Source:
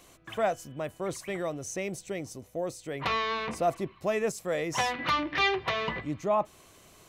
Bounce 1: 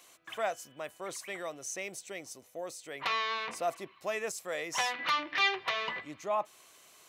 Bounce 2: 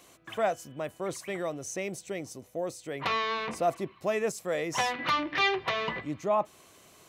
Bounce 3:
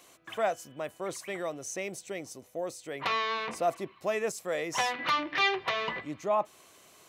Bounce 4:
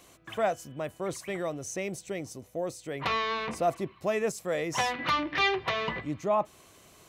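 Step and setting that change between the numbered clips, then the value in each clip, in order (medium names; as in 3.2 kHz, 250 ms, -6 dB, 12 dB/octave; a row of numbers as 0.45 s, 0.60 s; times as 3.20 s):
high-pass, cutoff frequency: 1.1 kHz, 150 Hz, 390 Hz, 48 Hz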